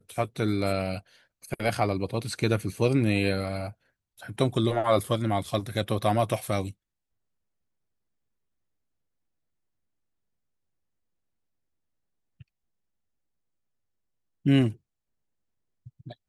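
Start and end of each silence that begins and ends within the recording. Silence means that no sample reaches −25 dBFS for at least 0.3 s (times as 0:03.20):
0:00.96–0:01.52
0:03.65–0:04.39
0:06.62–0:14.46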